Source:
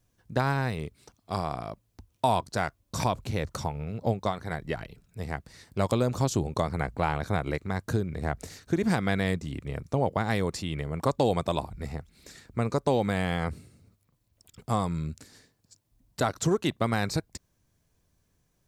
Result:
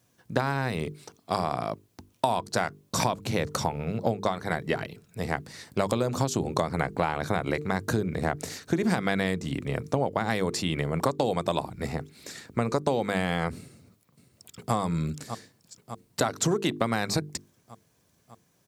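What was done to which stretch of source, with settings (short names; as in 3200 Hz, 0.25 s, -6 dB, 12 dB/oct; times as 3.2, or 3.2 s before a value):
13.57–14.74 echo throw 0.6 s, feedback 70%, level -13 dB
whole clip: HPF 130 Hz 12 dB/oct; notches 50/100/150/200/250/300/350/400/450 Hz; compressor, threshold -29 dBFS; gain +7.5 dB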